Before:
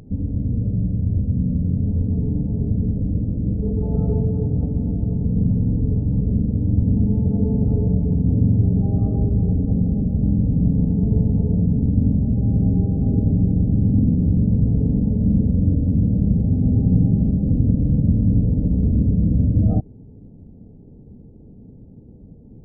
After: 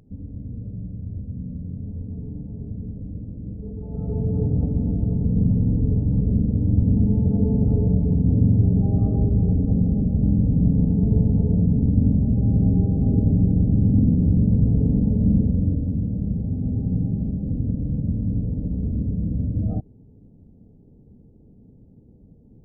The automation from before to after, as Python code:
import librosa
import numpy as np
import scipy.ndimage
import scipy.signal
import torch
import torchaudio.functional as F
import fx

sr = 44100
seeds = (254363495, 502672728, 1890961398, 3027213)

y = fx.gain(x, sr, db=fx.line((3.87, -11.5), (4.38, -0.5), (15.32, -0.5), (16.06, -7.0)))